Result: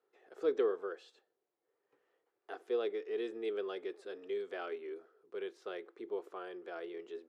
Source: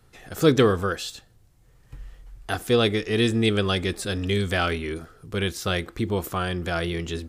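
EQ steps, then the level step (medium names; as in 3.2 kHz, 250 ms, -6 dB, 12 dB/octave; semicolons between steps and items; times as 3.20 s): ladder band-pass 440 Hz, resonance 65%; differentiator; +16.5 dB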